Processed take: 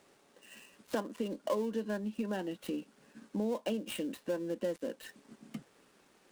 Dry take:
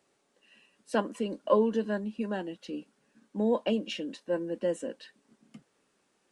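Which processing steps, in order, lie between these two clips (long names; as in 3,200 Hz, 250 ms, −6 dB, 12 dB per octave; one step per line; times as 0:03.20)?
gap after every zero crossing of 0.093 ms
downward compressor 3 to 1, threshold −45 dBFS, peak gain reduction 19.5 dB
level +8.5 dB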